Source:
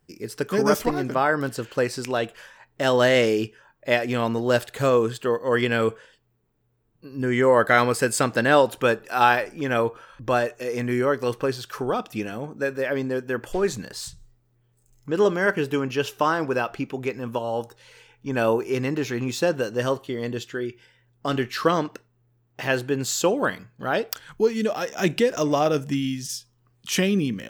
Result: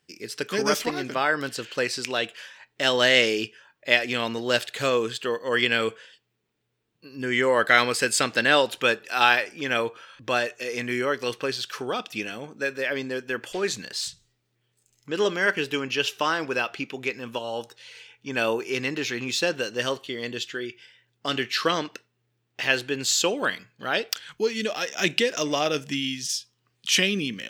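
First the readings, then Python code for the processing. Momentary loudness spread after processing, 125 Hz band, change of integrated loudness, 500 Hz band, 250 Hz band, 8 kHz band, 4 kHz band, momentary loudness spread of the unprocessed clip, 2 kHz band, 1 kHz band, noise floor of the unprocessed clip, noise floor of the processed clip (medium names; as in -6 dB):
13 LU, -9.0 dB, -1.0 dB, -4.5 dB, -5.5 dB, +2.5 dB, +7.0 dB, 12 LU, +2.5 dB, -3.5 dB, -66 dBFS, -74 dBFS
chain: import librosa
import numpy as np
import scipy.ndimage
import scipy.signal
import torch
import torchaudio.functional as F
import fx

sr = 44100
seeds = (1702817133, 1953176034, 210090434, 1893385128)

y = fx.weighting(x, sr, curve='D')
y = y * 10.0 ** (-4.0 / 20.0)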